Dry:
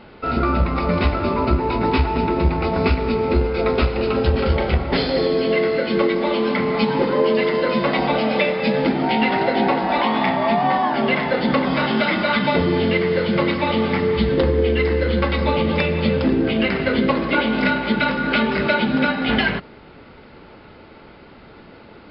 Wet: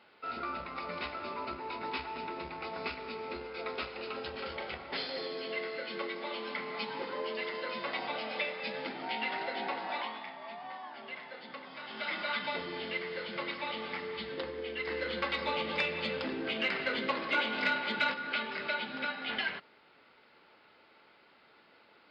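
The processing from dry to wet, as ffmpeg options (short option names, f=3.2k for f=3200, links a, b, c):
-filter_complex "[0:a]asettb=1/sr,asplit=3[a][b][c];[a]atrim=end=14.874[d];[b]atrim=start=14.87:end=18.14,asetpts=PTS-STARTPTS,afade=t=in:d=0.004:c=qsin,afade=t=out:st=3.266:d=0.004:c=qsin,acontrast=28[e];[c]atrim=start=18.136[f];[d][e]acrossfade=d=0.004:c1=hsin:c2=qsin[g];[g][f]acrossfade=d=0.004:c1=qsin:c2=hsin,asplit=3[h][i][j];[h]atrim=end=10.24,asetpts=PTS-STARTPTS,afade=t=out:st=9.92:d=0.32:silence=0.354813[k];[i]atrim=start=10.24:end=11.84,asetpts=PTS-STARTPTS,volume=-9dB[l];[j]atrim=start=11.84,asetpts=PTS-STARTPTS,afade=t=in:d=0.32:silence=0.354813[m];[k][l][m]concat=n=3:v=0:a=1,lowpass=f=1.3k:p=1,aderivative,volume=3.5dB"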